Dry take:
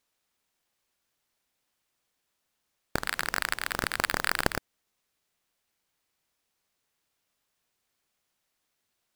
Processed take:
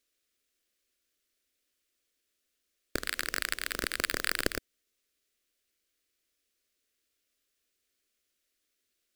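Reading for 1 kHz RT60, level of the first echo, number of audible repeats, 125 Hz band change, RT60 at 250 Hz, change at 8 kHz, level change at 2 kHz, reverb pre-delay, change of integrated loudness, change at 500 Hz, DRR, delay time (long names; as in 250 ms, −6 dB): no reverb audible, no echo audible, no echo audible, −7.5 dB, no reverb audible, 0.0 dB, −3.5 dB, no reverb audible, −2.5 dB, −2.5 dB, no reverb audible, no echo audible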